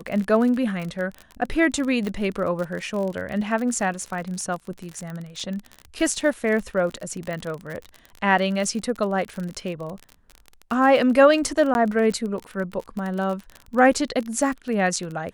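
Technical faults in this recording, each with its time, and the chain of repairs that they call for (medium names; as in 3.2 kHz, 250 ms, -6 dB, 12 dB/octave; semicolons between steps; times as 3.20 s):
crackle 38 per s -28 dBFS
2.07 s: pop -16 dBFS
7.33 s: pop -20 dBFS
11.74–11.75 s: dropout 11 ms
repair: de-click; interpolate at 11.74 s, 11 ms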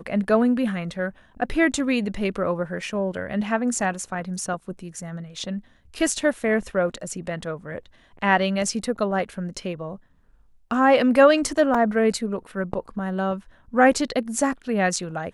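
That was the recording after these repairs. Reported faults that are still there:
nothing left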